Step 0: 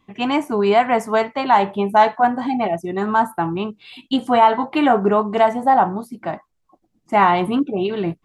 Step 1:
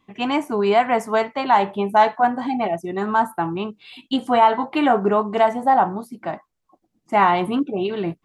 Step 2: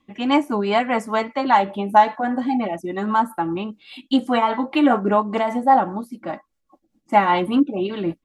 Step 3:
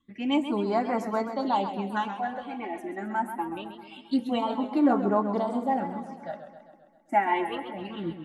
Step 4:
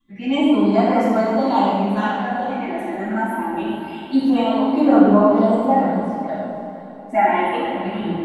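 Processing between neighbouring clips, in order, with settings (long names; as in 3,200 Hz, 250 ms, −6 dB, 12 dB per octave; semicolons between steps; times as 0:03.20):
low-shelf EQ 110 Hz −6 dB; level −1.5 dB
comb filter 3.6 ms, depth 48%; rotating-speaker cabinet horn 5 Hz; level +2 dB
all-pass phaser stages 8, 0.25 Hz, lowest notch 140–3,200 Hz; feedback echo with a swinging delay time 132 ms, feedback 61%, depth 104 cents, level −10 dB; level −6.5 dB
feedback delay with all-pass diffusion 493 ms, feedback 45%, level −13 dB; convolution reverb RT60 1.1 s, pre-delay 3 ms, DRR −13 dB; level −7.5 dB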